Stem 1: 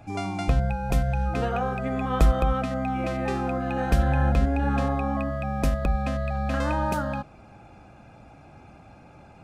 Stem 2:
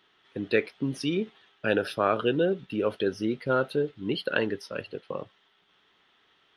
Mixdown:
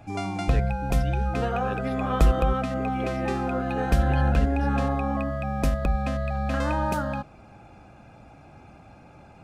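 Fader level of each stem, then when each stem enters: 0.0, −12.5 decibels; 0.00, 0.00 seconds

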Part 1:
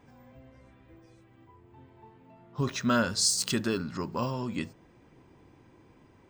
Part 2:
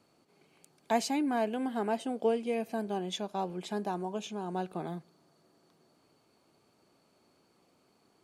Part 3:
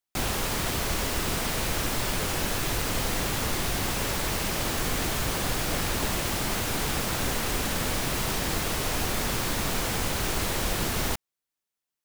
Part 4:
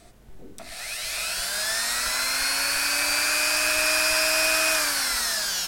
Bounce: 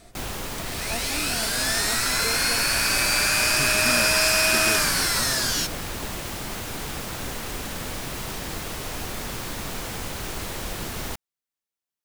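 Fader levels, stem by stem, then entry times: −5.0, −7.0, −4.0, +1.5 decibels; 1.00, 0.00, 0.00, 0.00 seconds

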